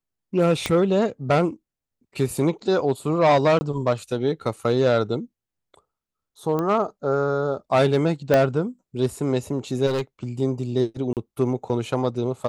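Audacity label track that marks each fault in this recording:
0.660000	0.660000	pop -9 dBFS
3.590000	3.610000	dropout 20 ms
6.590000	6.590000	pop -14 dBFS
8.340000	8.340000	pop -6 dBFS
9.860000	10.240000	clipped -21 dBFS
11.130000	11.170000	dropout 38 ms

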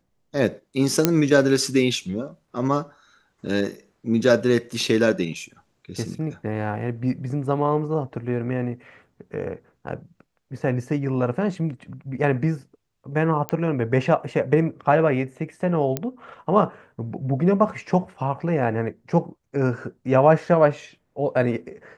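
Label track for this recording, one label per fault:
1.050000	1.050000	pop -1 dBFS
13.490000	13.490000	pop -11 dBFS
15.970000	15.970000	pop -9 dBFS

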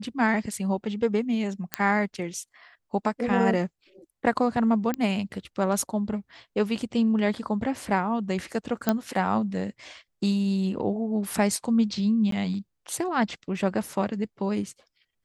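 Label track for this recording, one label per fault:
1.740000	1.740000	pop -7 dBFS
4.940000	4.940000	pop -14 dBFS
8.890000	8.890000	pop -8 dBFS
12.310000	12.320000	dropout 13 ms

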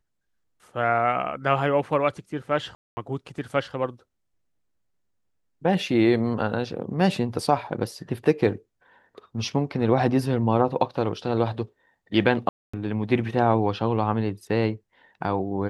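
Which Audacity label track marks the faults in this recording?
2.750000	2.970000	dropout 220 ms
12.490000	12.730000	dropout 245 ms

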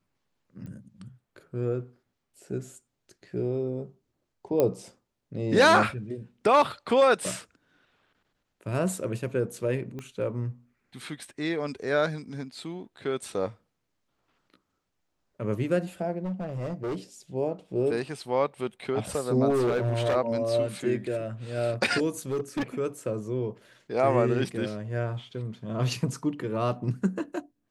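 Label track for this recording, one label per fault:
0.660000	0.660000	pop -32 dBFS
4.600000	4.600000	pop -12 dBFS
9.990000	9.990000	pop -25 dBFS
16.240000	16.960000	clipped -28 dBFS
19.490000	20.160000	clipped -21.5 dBFS
22.190000	22.630000	clipped -24.5 dBFS

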